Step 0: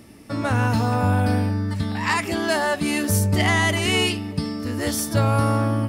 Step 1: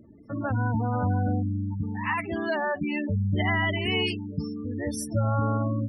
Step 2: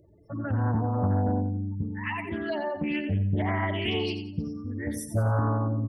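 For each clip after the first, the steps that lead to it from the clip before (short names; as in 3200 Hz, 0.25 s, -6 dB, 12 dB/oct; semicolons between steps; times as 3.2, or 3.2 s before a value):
spectral gate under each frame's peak -15 dB strong; gain -5 dB
envelope phaser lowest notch 220 Hz, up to 2700 Hz, full sweep at -21 dBFS; feedback echo 89 ms, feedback 34%, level -9 dB; Doppler distortion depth 0.35 ms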